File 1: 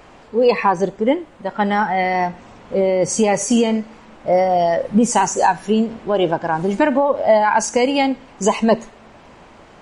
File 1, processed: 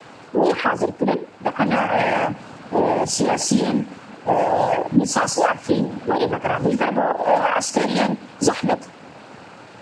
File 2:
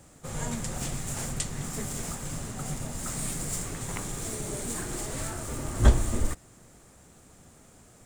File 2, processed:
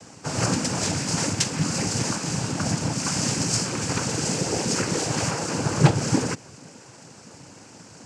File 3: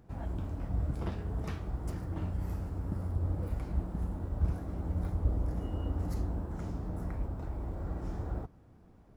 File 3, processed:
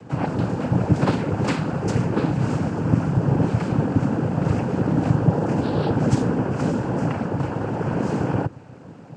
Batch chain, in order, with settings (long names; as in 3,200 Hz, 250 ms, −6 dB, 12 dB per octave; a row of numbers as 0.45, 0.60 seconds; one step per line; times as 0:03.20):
downward compressor 5 to 1, threshold −20 dBFS
cochlear-implant simulation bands 8
normalise the peak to −3 dBFS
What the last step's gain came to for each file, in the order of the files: +4.0, +11.0, +20.0 decibels